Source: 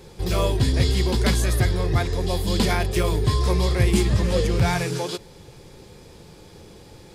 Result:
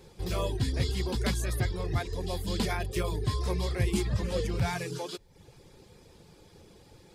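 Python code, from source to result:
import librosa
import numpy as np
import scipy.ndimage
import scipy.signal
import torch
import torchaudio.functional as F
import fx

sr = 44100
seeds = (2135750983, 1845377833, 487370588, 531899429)

y = fx.dereverb_blind(x, sr, rt60_s=0.55)
y = F.gain(torch.from_numpy(y), -8.0).numpy()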